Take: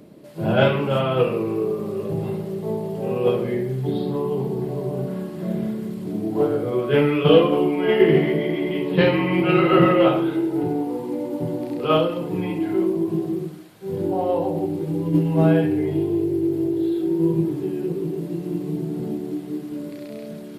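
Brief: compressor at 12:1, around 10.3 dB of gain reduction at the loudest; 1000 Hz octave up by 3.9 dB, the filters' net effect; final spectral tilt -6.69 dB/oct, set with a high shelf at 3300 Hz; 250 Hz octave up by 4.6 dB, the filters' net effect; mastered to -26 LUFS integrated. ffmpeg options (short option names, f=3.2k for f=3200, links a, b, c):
-af "equalizer=f=250:t=o:g=6.5,equalizer=f=1k:t=o:g=5.5,highshelf=f=3.3k:g=-3.5,acompressor=threshold=-16dB:ratio=12,volume=-4dB"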